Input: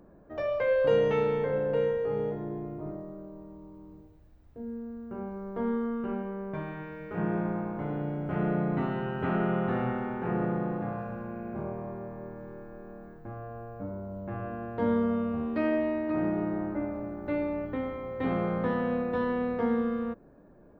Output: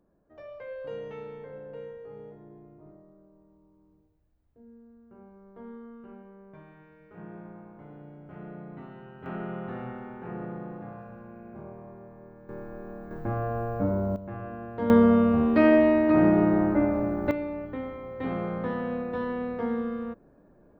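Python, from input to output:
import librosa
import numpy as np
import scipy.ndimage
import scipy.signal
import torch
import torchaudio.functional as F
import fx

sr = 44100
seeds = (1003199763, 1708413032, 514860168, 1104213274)

y = fx.gain(x, sr, db=fx.steps((0.0, -14.0), (9.26, -7.5), (12.49, 4.5), (13.11, 11.0), (14.16, -1.5), (14.9, 9.0), (17.31, -2.0)))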